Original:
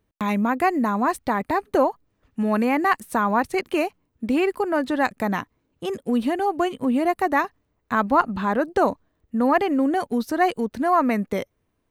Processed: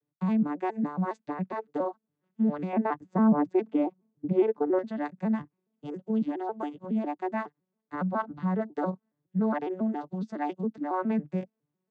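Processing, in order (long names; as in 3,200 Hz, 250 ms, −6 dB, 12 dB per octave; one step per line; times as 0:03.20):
vocoder with an arpeggio as carrier major triad, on D3, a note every 138 ms
0:02.73–0:04.79: tilt shelving filter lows +8.5 dB, about 1,400 Hz
level −7.5 dB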